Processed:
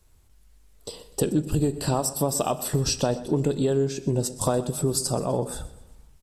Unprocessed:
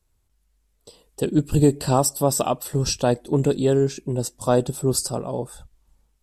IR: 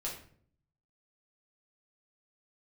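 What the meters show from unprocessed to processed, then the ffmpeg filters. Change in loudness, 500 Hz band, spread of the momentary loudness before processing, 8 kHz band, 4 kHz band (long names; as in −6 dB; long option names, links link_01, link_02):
−3.5 dB, −4.0 dB, 9 LU, −1.5 dB, −1.0 dB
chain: -filter_complex "[0:a]acompressor=threshold=-31dB:ratio=6,aecho=1:1:125|250|375|500:0.133|0.0573|0.0247|0.0106,asplit=2[link_01][link_02];[1:a]atrim=start_sample=2205,asetrate=22050,aresample=44100[link_03];[link_02][link_03]afir=irnorm=-1:irlink=0,volume=-19dB[link_04];[link_01][link_04]amix=inputs=2:normalize=0,volume=8.5dB"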